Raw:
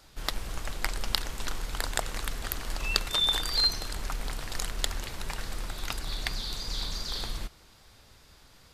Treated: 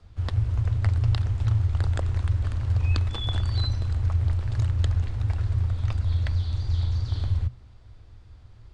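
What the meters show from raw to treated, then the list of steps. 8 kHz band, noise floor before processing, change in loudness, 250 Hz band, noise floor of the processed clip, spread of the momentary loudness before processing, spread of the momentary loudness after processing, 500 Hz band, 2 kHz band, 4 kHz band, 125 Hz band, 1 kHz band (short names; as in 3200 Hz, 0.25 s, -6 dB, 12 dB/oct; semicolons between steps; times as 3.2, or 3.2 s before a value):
under -15 dB, -56 dBFS, +5.5 dB, +3.5 dB, -49 dBFS, 13 LU, 3 LU, -1.5 dB, -7.0 dB, -10.5 dB, +20.0 dB, -4.5 dB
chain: downsampling 22050 Hz; frequency shift -120 Hz; RIAA curve playback; gain -4.5 dB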